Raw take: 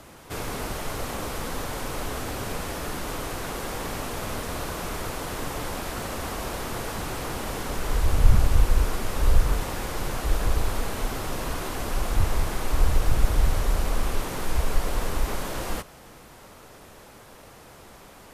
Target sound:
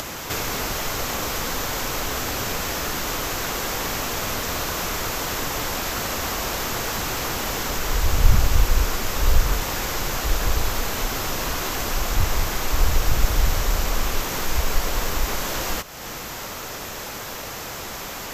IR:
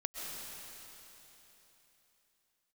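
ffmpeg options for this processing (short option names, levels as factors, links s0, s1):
-af "aexciter=amount=1:drive=1.9:freq=5500,tiltshelf=f=1200:g=-4,acompressor=mode=upward:threshold=0.0447:ratio=2.5,volume=1.78"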